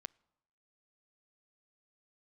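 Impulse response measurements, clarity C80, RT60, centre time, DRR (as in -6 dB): 29.0 dB, not exponential, 1 ms, 22.0 dB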